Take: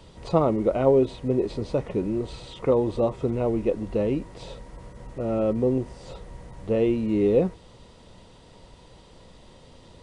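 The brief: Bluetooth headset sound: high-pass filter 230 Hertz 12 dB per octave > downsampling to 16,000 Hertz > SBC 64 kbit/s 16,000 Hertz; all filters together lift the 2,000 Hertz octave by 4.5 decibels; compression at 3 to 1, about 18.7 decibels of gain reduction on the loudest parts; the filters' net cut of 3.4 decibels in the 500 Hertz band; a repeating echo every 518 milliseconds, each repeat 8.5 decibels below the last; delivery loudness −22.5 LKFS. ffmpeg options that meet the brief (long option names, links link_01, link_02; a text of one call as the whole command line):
ffmpeg -i in.wav -af "equalizer=frequency=500:width_type=o:gain=-4,equalizer=frequency=2000:width_type=o:gain=6,acompressor=threshold=-44dB:ratio=3,highpass=230,aecho=1:1:518|1036|1554|2072:0.376|0.143|0.0543|0.0206,aresample=16000,aresample=44100,volume=22.5dB" -ar 16000 -c:a sbc -b:a 64k out.sbc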